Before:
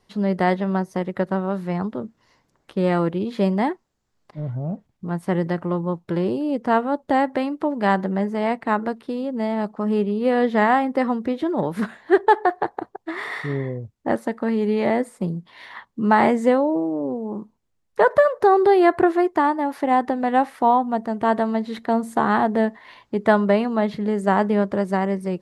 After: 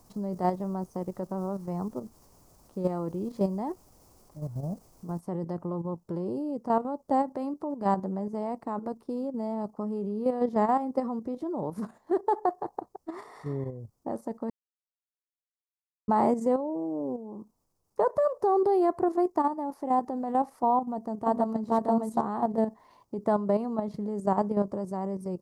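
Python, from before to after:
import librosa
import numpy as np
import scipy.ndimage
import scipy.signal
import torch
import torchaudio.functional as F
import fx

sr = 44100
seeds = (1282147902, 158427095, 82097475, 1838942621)

y = fx.noise_floor_step(x, sr, seeds[0], at_s=5.2, before_db=-50, after_db=-69, tilt_db=3.0)
y = fx.echo_throw(y, sr, start_s=20.8, length_s=0.94, ms=470, feedback_pct=10, wet_db=-1.0)
y = fx.edit(y, sr, fx.silence(start_s=14.5, length_s=1.58), tone=tone)
y = fx.band_shelf(y, sr, hz=2400.0, db=-15.5, octaves=1.7)
y = fx.level_steps(y, sr, step_db=9)
y = F.gain(torch.from_numpy(y), -4.5).numpy()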